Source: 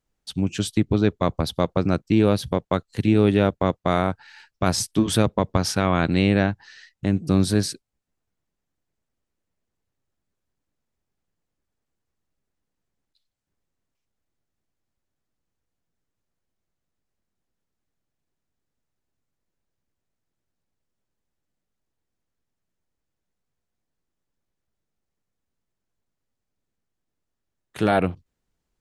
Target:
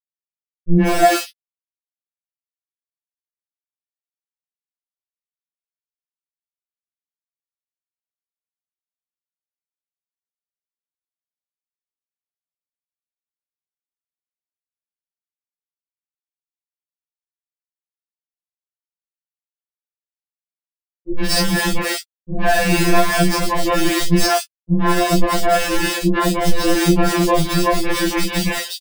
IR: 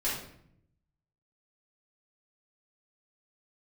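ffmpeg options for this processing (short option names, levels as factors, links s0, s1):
-filter_complex "[0:a]areverse,aecho=1:1:3:0.61,acompressor=threshold=0.0355:ratio=8,aeval=exprs='0.106*(cos(1*acos(clip(val(0)/0.106,-1,1)))-cos(1*PI/2))+0.00841*(cos(2*acos(clip(val(0)/0.106,-1,1)))-cos(2*PI/2))':c=same,adynamicsmooth=sensitivity=2.5:basefreq=3200,acrusher=bits=5:mix=0:aa=0.000001,acrossover=split=370|2900[s0][s1][s2];[s1]adelay=110[s3];[s2]adelay=170[s4];[s0][s3][s4]amix=inputs=3:normalize=0[s5];[1:a]atrim=start_sample=2205,atrim=end_sample=3969,asetrate=74970,aresample=44100[s6];[s5][s6]afir=irnorm=-1:irlink=0,alimiter=level_in=21.1:limit=0.891:release=50:level=0:latency=1,afftfilt=real='re*2.83*eq(mod(b,8),0)':imag='im*2.83*eq(mod(b,8),0)':win_size=2048:overlap=0.75,volume=0.708"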